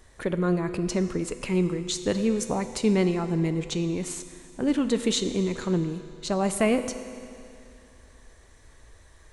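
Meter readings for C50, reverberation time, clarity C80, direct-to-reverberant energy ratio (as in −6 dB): 10.0 dB, 2.5 s, 11.0 dB, 9.0 dB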